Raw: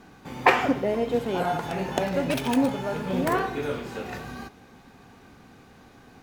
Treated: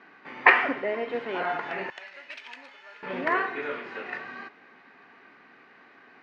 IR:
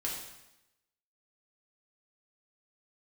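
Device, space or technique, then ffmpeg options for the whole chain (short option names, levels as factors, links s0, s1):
phone earpiece: -filter_complex "[0:a]highpass=470,equalizer=f=510:t=q:w=4:g=-6,equalizer=f=790:t=q:w=4:g=-7,equalizer=f=1900:t=q:w=4:g=7,equalizer=f=3500:t=q:w=4:g=-8,lowpass=f=3600:w=0.5412,lowpass=f=3600:w=1.3066,asettb=1/sr,asplit=3[s0][s1][s2];[s0]atrim=end=1.904[s3];[s1]atrim=start=1.9:end=3.03,asetpts=PTS-STARTPTS,afade=t=in:d=0.004:c=qsin,afade=t=out:st=1.126:d=0.004:c=qsin,aderivative[s4];[s2]atrim=start=3.026[s5];[s3][s4]acrossfade=d=0.004:c1=hsin:c2=qsin[s6];[s6][s5]acrossfade=d=0.004:c1=qsin:c2=hsin,volume=1.26"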